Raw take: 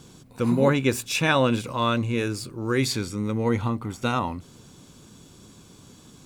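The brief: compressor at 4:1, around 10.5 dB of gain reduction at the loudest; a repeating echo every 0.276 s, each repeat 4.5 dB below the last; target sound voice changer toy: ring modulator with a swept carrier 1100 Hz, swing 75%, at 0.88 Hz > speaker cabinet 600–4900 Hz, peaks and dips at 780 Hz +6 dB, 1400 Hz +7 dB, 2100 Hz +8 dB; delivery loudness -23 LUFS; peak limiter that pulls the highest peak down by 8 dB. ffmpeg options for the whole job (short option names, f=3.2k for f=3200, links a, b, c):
-af "acompressor=threshold=-28dB:ratio=4,alimiter=level_in=1.5dB:limit=-24dB:level=0:latency=1,volume=-1.5dB,aecho=1:1:276|552|828|1104|1380|1656|1932|2208|2484:0.596|0.357|0.214|0.129|0.0772|0.0463|0.0278|0.0167|0.01,aeval=exprs='val(0)*sin(2*PI*1100*n/s+1100*0.75/0.88*sin(2*PI*0.88*n/s))':c=same,highpass=600,equalizer=f=780:t=q:w=4:g=6,equalizer=f=1.4k:t=q:w=4:g=7,equalizer=f=2.1k:t=q:w=4:g=8,lowpass=f=4.9k:w=0.5412,lowpass=f=4.9k:w=1.3066,volume=8.5dB"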